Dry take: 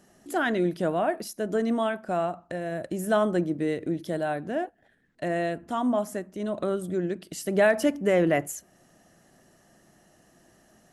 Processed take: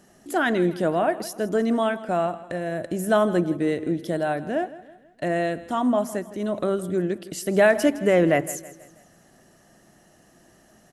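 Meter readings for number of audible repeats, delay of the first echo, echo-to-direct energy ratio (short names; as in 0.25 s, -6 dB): 3, 0.162 s, -16.0 dB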